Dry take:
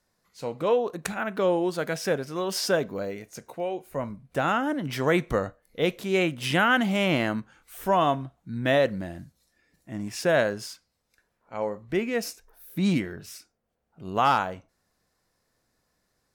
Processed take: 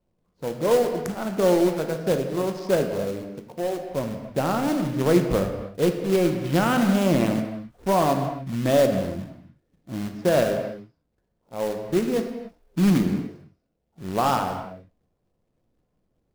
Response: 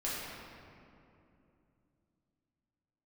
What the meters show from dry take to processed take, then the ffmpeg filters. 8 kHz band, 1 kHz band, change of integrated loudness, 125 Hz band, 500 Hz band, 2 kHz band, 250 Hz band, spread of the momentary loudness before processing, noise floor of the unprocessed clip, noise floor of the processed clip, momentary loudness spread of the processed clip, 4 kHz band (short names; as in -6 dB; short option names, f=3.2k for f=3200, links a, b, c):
+1.5 dB, 0.0 dB, +3.0 dB, +5.5 dB, +3.5 dB, -5.0 dB, +5.5 dB, 16 LU, -76 dBFS, -74 dBFS, 14 LU, -2.5 dB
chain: -filter_complex "[0:a]equalizer=f=2k:t=o:w=1.7:g=-13,adynamicsmooth=sensitivity=3:basefreq=920,acrusher=bits=3:mode=log:mix=0:aa=0.000001,asplit=2[a][b];[1:a]atrim=start_sample=2205,afade=t=out:st=0.35:d=0.01,atrim=end_sample=15876[c];[b][c]afir=irnorm=-1:irlink=0,volume=-6.5dB[d];[a][d]amix=inputs=2:normalize=0,volume=2dB"